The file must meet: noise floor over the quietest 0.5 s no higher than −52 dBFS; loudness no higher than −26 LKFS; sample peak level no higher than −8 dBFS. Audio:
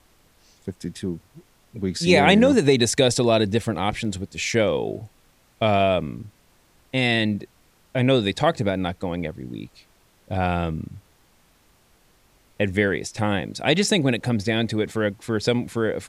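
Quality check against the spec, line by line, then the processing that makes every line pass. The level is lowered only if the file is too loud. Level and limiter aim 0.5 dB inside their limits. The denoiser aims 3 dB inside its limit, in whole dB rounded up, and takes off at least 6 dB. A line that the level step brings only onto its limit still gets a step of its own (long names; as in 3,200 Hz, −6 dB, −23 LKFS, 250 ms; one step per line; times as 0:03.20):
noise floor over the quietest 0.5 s −59 dBFS: in spec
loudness −22.0 LKFS: out of spec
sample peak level −5.0 dBFS: out of spec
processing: level −4.5 dB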